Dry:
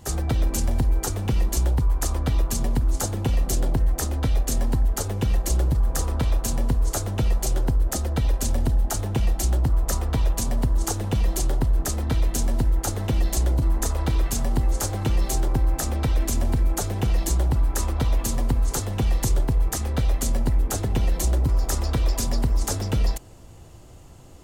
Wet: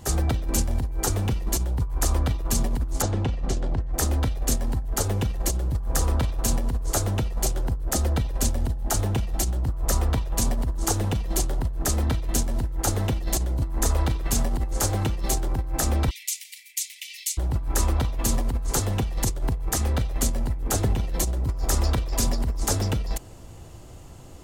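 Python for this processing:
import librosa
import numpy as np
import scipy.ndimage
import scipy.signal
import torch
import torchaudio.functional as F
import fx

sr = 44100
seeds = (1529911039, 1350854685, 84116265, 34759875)

y = fx.steep_highpass(x, sr, hz=2000.0, slope=96, at=(16.09, 17.37), fade=0.02)
y = fx.over_compress(y, sr, threshold_db=-22.0, ratio=-0.5)
y = fx.air_absorb(y, sr, metres=100.0, at=(3.02, 3.94))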